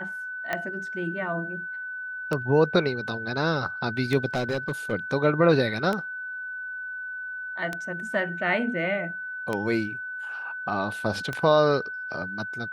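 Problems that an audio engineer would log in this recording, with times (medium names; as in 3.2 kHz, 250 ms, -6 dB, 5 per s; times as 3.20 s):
tick 33 1/3 rpm -14 dBFS
whine 1.5 kHz -32 dBFS
4.34–4.93 s: clipped -22 dBFS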